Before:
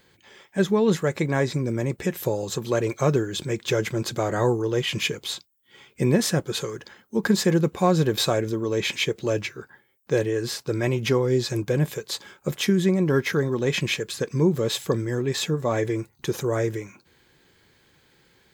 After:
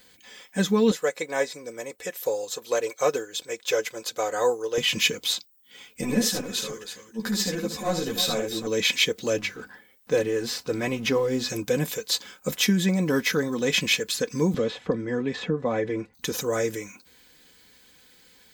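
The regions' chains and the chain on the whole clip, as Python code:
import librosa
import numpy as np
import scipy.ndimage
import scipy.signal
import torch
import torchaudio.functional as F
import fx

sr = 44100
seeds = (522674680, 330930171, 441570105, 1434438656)

y = fx.chain(x, sr, fx.low_shelf_res(hz=320.0, db=-11.5, q=1.5),
    fx.upward_expand(threshold_db=-35.0, expansion=1.5), at=(0.91, 4.78))
y = fx.chain(y, sr, fx.transient(attack_db=-12, sustain_db=-2),
    fx.echo_multitap(ms=(71, 331), db=(-7.5, -11.0)),
    fx.ensemble(), at=(6.01, 8.67))
y = fx.chain(y, sr, fx.law_mismatch(coded='mu'),
    fx.high_shelf(hz=3900.0, db=-10.0),
    fx.hum_notches(base_hz=50, count=6), at=(9.37, 11.49))
y = fx.chain(y, sr, fx.lowpass(hz=2800.0, slope=12),
    fx.high_shelf(hz=2000.0, db=-10.5),
    fx.band_squash(depth_pct=100), at=(14.54, 16.14))
y = fx.high_shelf(y, sr, hz=3200.0, db=11.5)
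y = y + 0.65 * np.pad(y, (int(4.0 * sr / 1000.0), 0))[:len(y)]
y = fx.dynamic_eq(y, sr, hz=9600.0, q=1.1, threshold_db=-38.0, ratio=4.0, max_db=-6)
y = y * librosa.db_to_amplitude(-2.5)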